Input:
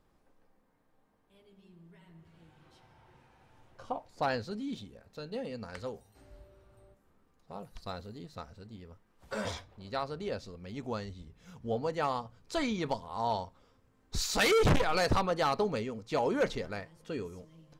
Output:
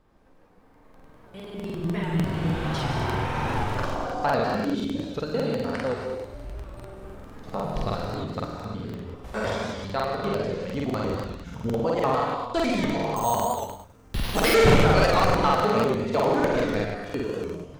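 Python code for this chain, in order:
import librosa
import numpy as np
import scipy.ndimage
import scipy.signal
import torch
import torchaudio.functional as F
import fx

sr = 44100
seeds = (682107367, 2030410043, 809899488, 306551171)

y = fx.recorder_agc(x, sr, target_db=-25.5, rise_db_per_s=11.0, max_gain_db=30)
y = fx.high_shelf(y, sr, hz=4400.0, db=-9.0)
y = y + 10.0 ** (-7.5 / 20.0) * np.pad(y, (int(120 * sr / 1000.0), 0))[:len(y)]
y = fx.rev_gated(y, sr, seeds[0], gate_ms=320, shape='flat', drr_db=0.5)
y = fx.resample_bad(y, sr, factor=6, down='none', up='hold', at=(13.16, 14.51))
y = fx.buffer_crackle(y, sr, first_s=0.65, period_s=0.1, block=2048, kind='repeat')
y = fx.record_warp(y, sr, rpm=78.0, depth_cents=100.0)
y = y * 10.0 ** (6.0 / 20.0)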